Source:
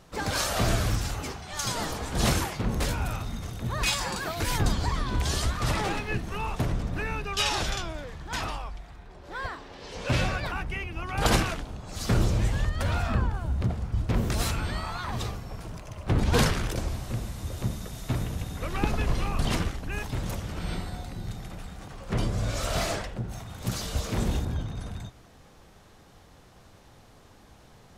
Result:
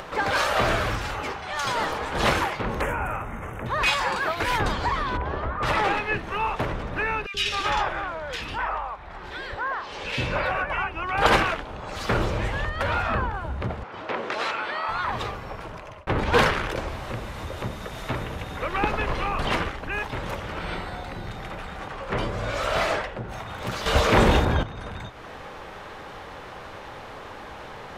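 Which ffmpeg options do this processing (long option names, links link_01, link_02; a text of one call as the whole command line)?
ffmpeg -i in.wav -filter_complex "[0:a]asettb=1/sr,asplit=3[link_01][link_02][link_03];[link_01]atrim=end=2.814[link_04];[link_02]atrim=start=2.81:end=3.66,asetpts=PTS-STARTPTS,afade=type=in:duration=0.004:curve=qsin,afade=type=out:start_time=0.846:duration=0.004:curve=qsin,asuperstop=centerf=4300:order=4:qfactor=0.85[link_05];[link_03]atrim=start=3.656[link_06];[link_04][link_05]acrossfade=duration=0.004:curve1=hsin:curve2=qsin[link_07];[link_07][link_06]acrossfade=duration=0.004:curve1=qsin:curve2=hsin,asettb=1/sr,asplit=3[link_08][link_09][link_10];[link_08]atrim=end=5.174[link_11];[link_09]atrim=start=5.17:end=5.63,asetpts=PTS-STARTPTS,afade=type=in:duration=0.004:curve=qsin,afade=type=out:start_time=0.456:duration=0.004:curve=qsin,lowpass=1200[link_12];[link_10]atrim=start=5.626[link_13];[link_11][link_12]acrossfade=duration=0.004:curve1=hsin:curve2=qsin[link_14];[link_14][link_13]acrossfade=duration=0.004:curve1=qsin:curve2=hsin,asettb=1/sr,asplit=3[link_15][link_16][link_17];[link_15]atrim=end=7.264[link_18];[link_16]atrim=start=7.26:end=10.94,asetpts=PTS-STARTPTS,afade=type=in:duration=0.004:curve=qsin,afade=type=out:start_time=3.676:duration=0.004:curve=qsin,acrossover=split=410|2100[link_19][link_20][link_21];[link_19]adelay=80[link_22];[link_20]adelay=260[link_23];[link_22][link_23][link_21]amix=inputs=3:normalize=0,atrim=end_sample=162288[link_24];[link_17]atrim=start=10.936[link_25];[link_18][link_24]acrossfade=duration=0.004:curve1=hsin:curve2=qsin[link_26];[link_26][link_25]acrossfade=duration=0.004:curve1=qsin:curve2=hsin,asettb=1/sr,asplit=3[link_27][link_28][link_29];[link_27]atrim=end=13.834[link_30];[link_28]atrim=start=13.83:end=14.89,asetpts=PTS-STARTPTS,afade=type=in:duration=0.004:curve=qsin,afade=type=out:start_time=1.056:duration=0.004:curve=qsin,highpass=370,lowpass=5300[link_31];[link_29]atrim=start=14.886[link_32];[link_30][link_31]acrossfade=duration=0.004:curve1=hsin:curve2=qsin[link_33];[link_33][link_32]acrossfade=duration=0.004:curve1=qsin:curve2=hsin,asplit=4[link_34][link_35][link_36][link_37];[link_34]atrim=end=16.07,asetpts=PTS-STARTPTS,afade=type=out:start_time=15.43:duration=0.64[link_38];[link_35]atrim=start=16.07:end=23.862,asetpts=PTS-STARTPTS,afade=type=in:duration=0.004:curve=hsin[link_39];[link_36]atrim=start=23.858:end=24.632,asetpts=PTS-STARTPTS,volume=10dB[link_40];[link_37]atrim=start=24.628[link_41];[link_38][link_39]concat=n=2:v=0:a=1[link_42];[link_42][link_40]acrossfade=duration=0.004:curve1=hsin:curve2=hsin[link_43];[link_43][link_41]acrossfade=duration=0.004:curve1=hsin:curve2=hsin,acrossover=split=410 3200:gain=0.224 1 0.141[link_44][link_45][link_46];[link_44][link_45][link_46]amix=inputs=3:normalize=0,bandreject=frequency=700:width=12,acompressor=mode=upward:threshold=-37dB:ratio=2.5,volume=9dB" out.wav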